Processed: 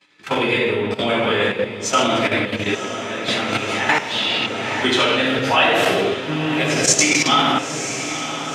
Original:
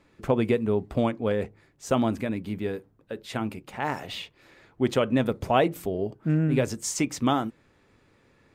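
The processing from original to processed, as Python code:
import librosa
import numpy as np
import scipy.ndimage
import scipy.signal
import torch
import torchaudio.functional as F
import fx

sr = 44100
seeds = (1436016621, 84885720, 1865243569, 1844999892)

y = fx.spec_quant(x, sr, step_db=15)
y = scipy.signal.sosfilt(scipy.signal.butter(2, 3400.0, 'lowpass', fs=sr, output='sos'), y)
y = fx.high_shelf(y, sr, hz=2300.0, db=12.0)
y = fx.room_shoebox(y, sr, seeds[0], volume_m3=940.0, walls='mixed', distance_m=8.6)
y = fx.level_steps(y, sr, step_db=14)
y = scipy.signal.sosfilt(scipy.signal.butter(2, 90.0, 'highpass', fs=sr, output='sos'), y)
y = fx.tilt_eq(y, sr, slope=4.0)
y = fx.echo_diffused(y, sr, ms=966, feedback_pct=63, wet_db=-10.0)
y = fx.band_squash(y, sr, depth_pct=70, at=(3.28, 5.39))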